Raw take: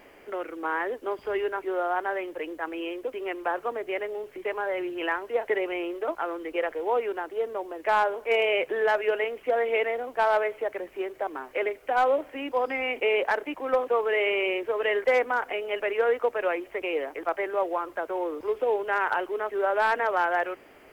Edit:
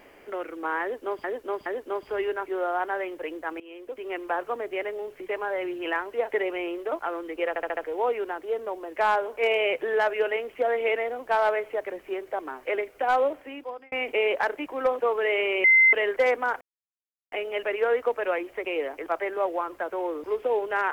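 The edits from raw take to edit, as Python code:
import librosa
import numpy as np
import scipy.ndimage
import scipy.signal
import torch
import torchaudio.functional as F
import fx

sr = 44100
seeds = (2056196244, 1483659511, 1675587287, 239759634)

y = fx.edit(x, sr, fx.repeat(start_s=0.82, length_s=0.42, count=3),
    fx.fade_in_from(start_s=2.76, length_s=0.57, floor_db=-18.5),
    fx.stutter(start_s=6.65, slice_s=0.07, count=5),
    fx.fade_out_span(start_s=12.1, length_s=0.7),
    fx.bleep(start_s=14.52, length_s=0.29, hz=2070.0, db=-13.5),
    fx.insert_silence(at_s=15.49, length_s=0.71), tone=tone)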